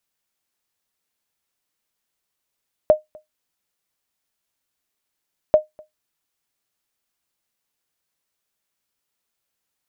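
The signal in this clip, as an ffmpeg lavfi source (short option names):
-f lavfi -i "aevalsrc='0.631*(sin(2*PI*615*mod(t,2.64))*exp(-6.91*mod(t,2.64)/0.15)+0.0355*sin(2*PI*615*max(mod(t,2.64)-0.25,0))*exp(-6.91*max(mod(t,2.64)-0.25,0)/0.15))':d=5.28:s=44100"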